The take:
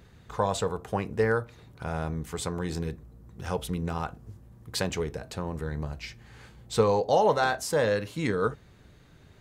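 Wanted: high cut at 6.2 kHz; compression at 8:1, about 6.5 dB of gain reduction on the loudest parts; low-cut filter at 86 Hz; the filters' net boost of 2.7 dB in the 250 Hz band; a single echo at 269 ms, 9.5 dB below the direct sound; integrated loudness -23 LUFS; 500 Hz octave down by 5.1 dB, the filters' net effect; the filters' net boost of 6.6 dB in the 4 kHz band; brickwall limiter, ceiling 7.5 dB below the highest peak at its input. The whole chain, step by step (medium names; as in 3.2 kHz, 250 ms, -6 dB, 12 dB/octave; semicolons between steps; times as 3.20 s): high-pass 86 Hz; low-pass 6.2 kHz; peaking EQ 250 Hz +6 dB; peaking EQ 500 Hz -7.5 dB; peaking EQ 4 kHz +8.5 dB; compression 8:1, threshold -27 dBFS; peak limiter -22 dBFS; delay 269 ms -9.5 dB; trim +12 dB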